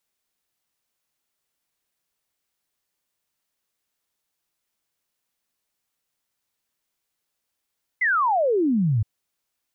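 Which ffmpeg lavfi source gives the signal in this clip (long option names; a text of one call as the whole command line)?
ffmpeg -f lavfi -i "aevalsrc='0.133*clip(min(t,1.02-t)/0.01,0,1)*sin(2*PI*2100*1.02/log(99/2100)*(exp(log(99/2100)*t/1.02)-1))':duration=1.02:sample_rate=44100" out.wav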